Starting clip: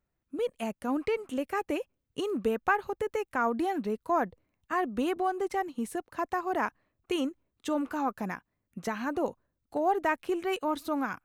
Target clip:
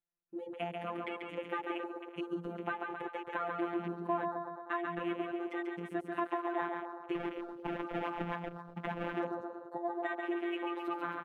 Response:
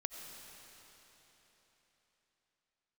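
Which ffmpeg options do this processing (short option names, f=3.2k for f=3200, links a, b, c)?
-filter_complex "[0:a]highshelf=f=2.7k:g=9.5,acompressor=threshold=-34dB:ratio=8,bandreject=f=490:w=12,aecho=1:1:140|266|379.4|481.5|573.3:0.631|0.398|0.251|0.158|0.1,asettb=1/sr,asplit=3[a][b][c];[a]atrim=end=7.154[d];[b]atrim=start=7.15:end=9.2,asetpts=PTS-STARTPTS,afade=t=in:d=0.004:c=qsin,afade=t=out:st=2.046:d=0.004:c=qsin,acrusher=samples=25:mix=1:aa=0.000001:lfo=1:lforange=40:lforate=3.9[e];[c]atrim=start=9.196[f];[d][e]acrossfade=d=0.004:c1=hsin:c2=qsin[g];[g][f]acrossfade=d=0.004:c1=qsin:c2=hsin,bass=f=250:g=-5,treble=f=4k:g=-15,afftfilt=real='hypot(re,im)*cos(PI*b)':imag='0':win_size=1024:overlap=0.75,acrossover=split=170|3000[h][i][j];[h]acompressor=threshold=-47dB:ratio=3[k];[k][i][j]amix=inputs=3:normalize=0,afwtdn=0.00316,volume=4.5dB"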